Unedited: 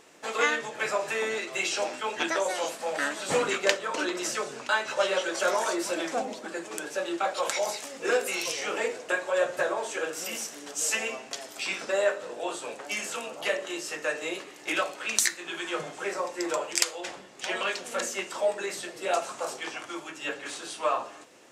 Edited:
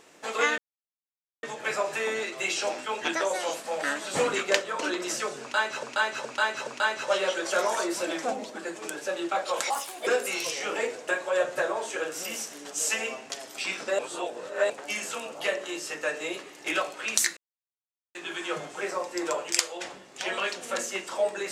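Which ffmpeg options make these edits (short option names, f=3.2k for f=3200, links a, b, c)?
-filter_complex "[0:a]asplit=10[a][b][c][d][e][f][g][h][i][j];[a]atrim=end=0.58,asetpts=PTS-STARTPTS,afade=t=out:st=0.576:d=0.004:c=hsin,apad=pad_dur=0.85[k];[b]atrim=start=0.58:end=4.982,asetpts=PTS-STARTPTS,afade=t=in:d=0.004:c=hsin[l];[c]atrim=start=4.558:end=4.982[m];[d]atrim=start=4.558:end=4.982[n];[e]atrim=start=4.558:end=7.594[o];[f]atrim=start=7.59:end=8.08,asetpts=PTS-STARTPTS,asetrate=58653,aresample=44100,atrim=end_sample=16247,asetpts=PTS-STARTPTS[p];[g]atrim=start=8.076:end=12.002[q];[h]atrim=start=11.998:end=12.712,asetpts=PTS-STARTPTS,areverse[r];[i]atrim=start=12.708:end=15.38,asetpts=PTS-STARTPTS,afade=t=out:st=2.668:d=0.004:c=hsin,apad=pad_dur=0.78[s];[j]atrim=start=15.38,asetpts=PTS-STARTPTS,afade=t=in:d=0.004:c=hsin[t];[k][l]concat=n=2:v=0:a=1[u];[u][m]acrossfade=d=0.004:c1=hsin:c2=hsin[v];[v][n]acrossfade=d=0.004:c1=hsin:c2=hsin[w];[w][o]acrossfade=d=0.004:c1=hsin:c2=hsin[x];[x][p]acrossfade=d=0.004:c1=hsin:c2=hsin[y];[y][q]acrossfade=d=0.004:c1=hsin:c2=hsin[z];[z][r]acrossfade=d=0.004:c1=hsin:c2=hsin[aa];[s][t]concat=n=2:v=0:a=1[ab];[aa][ab]acrossfade=d=0.004:c1=hsin:c2=hsin"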